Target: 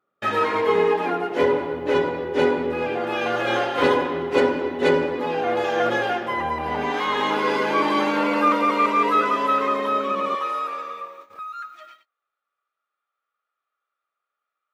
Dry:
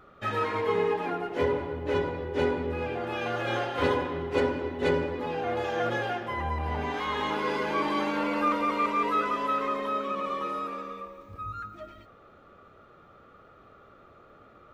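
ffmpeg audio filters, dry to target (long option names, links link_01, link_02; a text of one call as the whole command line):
ffmpeg -i in.wav -af "agate=range=-30dB:threshold=-47dB:ratio=16:detection=peak,asetnsamples=nb_out_samples=441:pad=0,asendcmd='10.35 highpass f 640;11.39 highpass f 1400',highpass=190,volume=7.5dB" out.wav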